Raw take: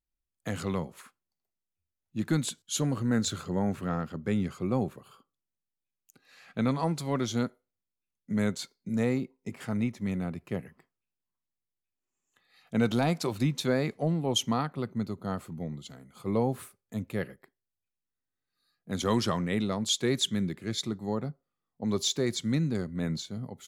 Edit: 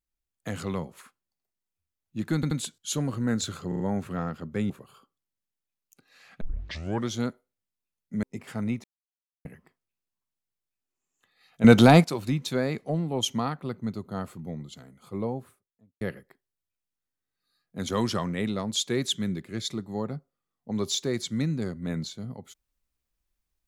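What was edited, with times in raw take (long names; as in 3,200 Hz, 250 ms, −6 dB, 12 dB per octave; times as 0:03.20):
0:02.35: stutter 0.08 s, 3 plays
0:03.52: stutter 0.04 s, 4 plays
0:04.42–0:04.87: remove
0:06.58: tape start 0.67 s
0:08.40–0:09.36: remove
0:09.97–0:10.58: silence
0:12.77–0:13.17: clip gain +11.5 dB
0:15.92–0:17.14: fade out and dull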